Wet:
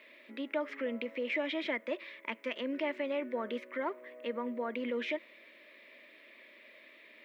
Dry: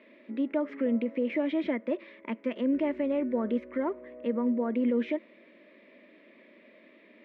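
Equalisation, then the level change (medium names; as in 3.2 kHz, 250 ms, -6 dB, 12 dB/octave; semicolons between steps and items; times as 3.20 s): high-pass 290 Hz 6 dB/octave; tilt EQ +4 dB/octave; 0.0 dB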